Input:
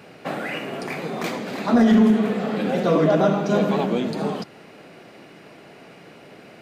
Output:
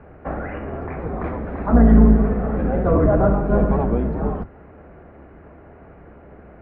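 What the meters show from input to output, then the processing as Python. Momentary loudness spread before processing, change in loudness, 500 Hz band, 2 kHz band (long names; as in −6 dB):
14 LU, +2.0 dB, 0.0 dB, −5.0 dB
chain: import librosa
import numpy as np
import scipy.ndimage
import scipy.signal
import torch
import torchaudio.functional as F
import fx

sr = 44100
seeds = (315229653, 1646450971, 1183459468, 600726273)

y = fx.octave_divider(x, sr, octaves=2, level_db=3.0)
y = scipy.signal.sosfilt(scipy.signal.butter(4, 1600.0, 'lowpass', fs=sr, output='sos'), y)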